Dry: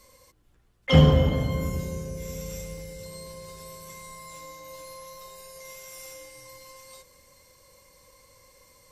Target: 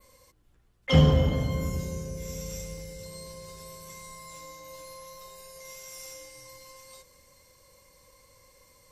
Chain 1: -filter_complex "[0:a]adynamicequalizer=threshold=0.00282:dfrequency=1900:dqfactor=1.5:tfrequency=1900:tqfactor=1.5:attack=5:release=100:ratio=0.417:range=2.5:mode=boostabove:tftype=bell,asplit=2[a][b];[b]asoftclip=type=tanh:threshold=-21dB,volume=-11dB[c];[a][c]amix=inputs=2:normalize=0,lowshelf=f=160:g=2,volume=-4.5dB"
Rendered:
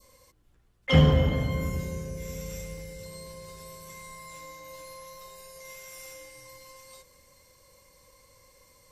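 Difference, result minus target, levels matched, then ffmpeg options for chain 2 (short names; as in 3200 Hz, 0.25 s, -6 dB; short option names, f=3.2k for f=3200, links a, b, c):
8000 Hz band -3.5 dB
-filter_complex "[0:a]adynamicequalizer=threshold=0.00282:dfrequency=5800:dqfactor=1.5:tfrequency=5800:tqfactor=1.5:attack=5:release=100:ratio=0.417:range=2.5:mode=boostabove:tftype=bell,asplit=2[a][b];[b]asoftclip=type=tanh:threshold=-21dB,volume=-11dB[c];[a][c]amix=inputs=2:normalize=0,lowshelf=f=160:g=2,volume=-4.5dB"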